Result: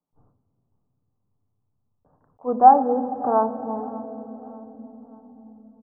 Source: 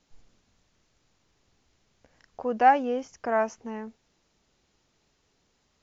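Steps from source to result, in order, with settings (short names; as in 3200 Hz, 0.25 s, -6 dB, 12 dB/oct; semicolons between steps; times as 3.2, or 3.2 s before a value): gate with hold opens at -47 dBFS; steep low-pass 1200 Hz 48 dB/oct; feedback echo 0.593 s, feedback 37%, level -19.5 dB; reverb RT60 4.2 s, pre-delay 3 ms, DRR 8 dB; attack slew limiter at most 410 dB/s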